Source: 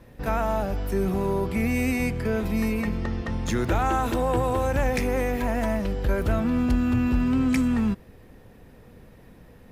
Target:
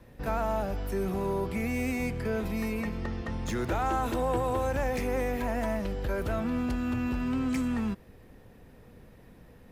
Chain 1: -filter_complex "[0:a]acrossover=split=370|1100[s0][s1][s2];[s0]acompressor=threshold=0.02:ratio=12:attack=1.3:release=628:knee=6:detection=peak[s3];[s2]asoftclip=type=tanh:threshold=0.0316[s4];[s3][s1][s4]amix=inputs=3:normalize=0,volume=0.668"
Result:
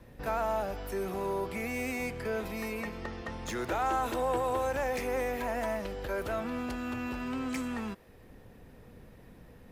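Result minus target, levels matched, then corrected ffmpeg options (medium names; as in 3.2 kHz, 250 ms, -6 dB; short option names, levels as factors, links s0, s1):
compression: peak gain reduction +10.5 dB
-filter_complex "[0:a]acrossover=split=370|1100[s0][s1][s2];[s0]acompressor=threshold=0.075:ratio=12:attack=1.3:release=628:knee=6:detection=peak[s3];[s2]asoftclip=type=tanh:threshold=0.0316[s4];[s3][s1][s4]amix=inputs=3:normalize=0,volume=0.668"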